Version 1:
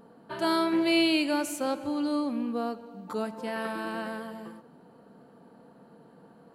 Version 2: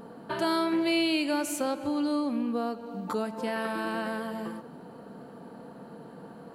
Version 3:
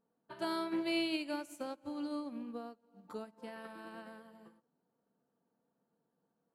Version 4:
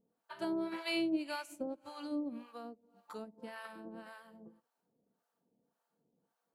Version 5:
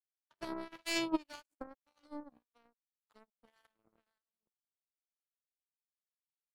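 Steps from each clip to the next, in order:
downward compressor 2 to 1, threshold −41 dBFS, peak gain reduction 11.5 dB; level +8.5 dB
expander for the loud parts 2.5 to 1, over −44 dBFS; level −7 dB
two-band tremolo in antiphase 1.8 Hz, depth 100%, crossover 660 Hz; level +5 dB
power curve on the samples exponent 3; level +8 dB

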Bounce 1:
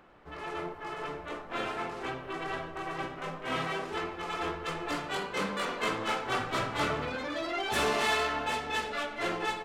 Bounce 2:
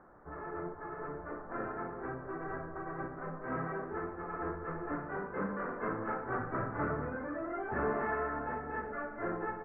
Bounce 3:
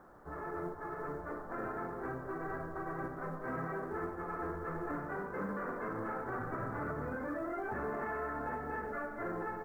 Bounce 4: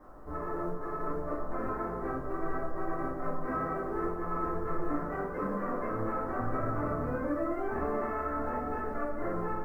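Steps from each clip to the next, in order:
dynamic equaliser 870 Hz, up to −6 dB, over −44 dBFS, Q 0.79; Butterworth low-pass 1,700 Hz 48 dB per octave
log-companded quantiser 8 bits; brickwall limiter −31 dBFS, peak gain reduction 9 dB; level +1 dB
convolution reverb RT60 0.30 s, pre-delay 3 ms, DRR −9.5 dB; level −7.5 dB

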